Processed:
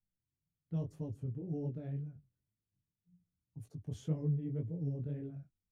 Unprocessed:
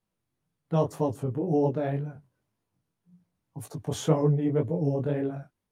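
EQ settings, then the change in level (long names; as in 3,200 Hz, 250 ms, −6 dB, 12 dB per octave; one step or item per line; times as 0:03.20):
guitar amp tone stack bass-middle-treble 10-0-1
parametric band 3,800 Hz −3 dB 0.24 octaves
high-shelf EQ 6,900 Hz −10.5 dB
+5.0 dB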